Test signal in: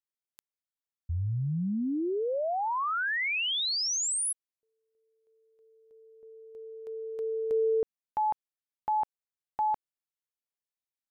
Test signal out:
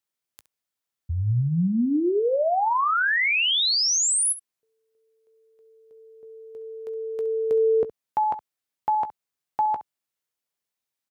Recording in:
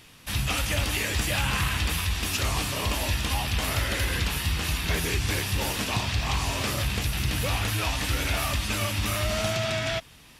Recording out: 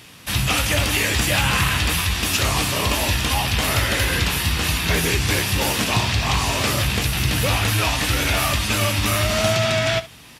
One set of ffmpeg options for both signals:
-filter_complex "[0:a]highpass=71,asplit=2[s0][s1];[s1]aecho=0:1:17|67:0.224|0.158[s2];[s0][s2]amix=inputs=2:normalize=0,volume=2.37"

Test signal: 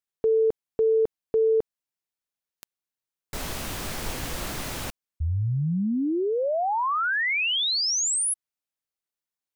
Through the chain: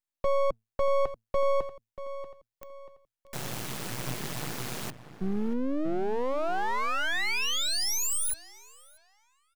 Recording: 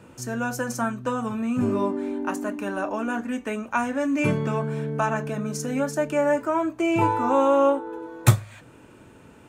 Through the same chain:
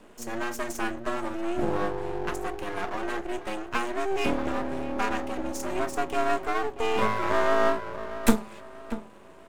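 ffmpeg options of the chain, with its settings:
-filter_complex "[0:a]asplit=2[s0][s1];[s1]adelay=636,lowpass=f=1500:p=1,volume=0.237,asplit=2[s2][s3];[s3]adelay=636,lowpass=f=1500:p=1,volume=0.39,asplit=2[s4][s5];[s5]adelay=636,lowpass=f=1500:p=1,volume=0.39,asplit=2[s6][s7];[s7]adelay=636,lowpass=f=1500:p=1,volume=0.39[s8];[s0][s2][s4][s6][s8]amix=inputs=5:normalize=0,afreqshift=110,aeval=exprs='max(val(0),0)':c=same"

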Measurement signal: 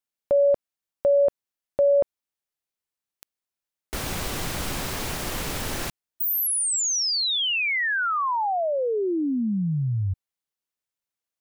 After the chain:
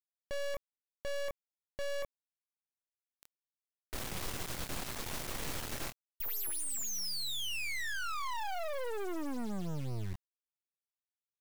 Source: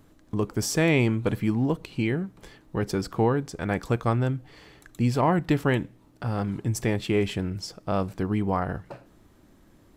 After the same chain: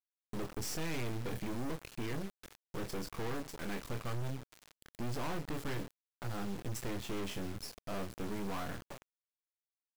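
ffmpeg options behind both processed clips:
-filter_complex "[0:a]asplit=2[s0][s1];[s1]adelay=25,volume=0.376[s2];[s0][s2]amix=inputs=2:normalize=0,volume=20,asoftclip=hard,volume=0.0501,acrusher=bits=4:dc=4:mix=0:aa=0.000001,volume=0.531"

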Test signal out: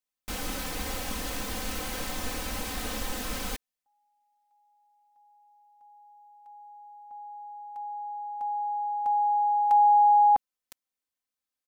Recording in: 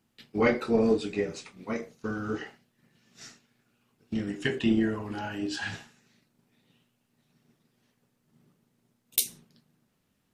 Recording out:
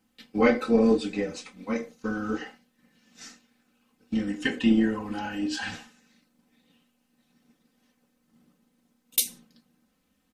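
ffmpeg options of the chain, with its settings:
-af "aecho=1:1:3.9:0.84"

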